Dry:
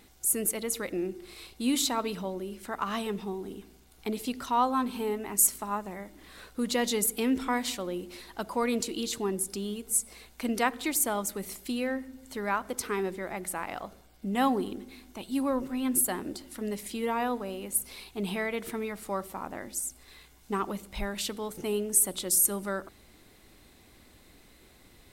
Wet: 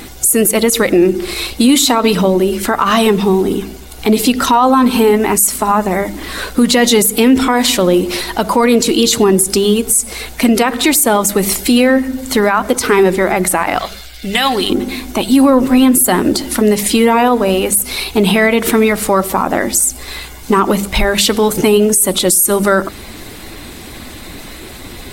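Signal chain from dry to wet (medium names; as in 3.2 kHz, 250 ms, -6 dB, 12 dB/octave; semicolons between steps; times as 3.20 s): coarse spectral quantiser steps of 15 dB; 13.79–14.70 s: graphic EQ 125/250/500/1000/2000/4000 Hz -9/-12/-6/-8/+5/+9 dB; in parallel at +1.5 dB: compression, threshold -37 dBFS, peak gain reduction 17 dB; on the sum: hum notches 50/100/150/200 Hz; loudness maximiser +21 dB; trim -1 dB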